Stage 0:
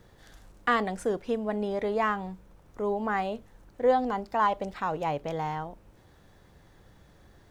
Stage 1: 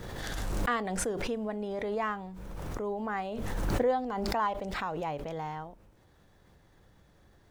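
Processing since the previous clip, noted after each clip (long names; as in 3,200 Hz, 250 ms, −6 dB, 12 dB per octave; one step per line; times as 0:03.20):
background raised ahead of every attack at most 22 dB per second
level −5.5 dB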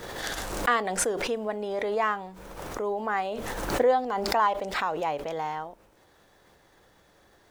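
bass and treble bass −13 dB, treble +1 dB
level +6.5 dB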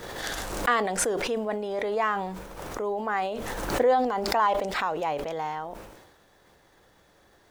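level that may fall only so fast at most 47 dB per second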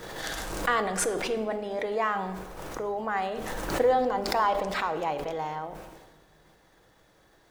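rectangular room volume 1,500 cubic metres, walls mixed, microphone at 0.61 metres
level −2 dB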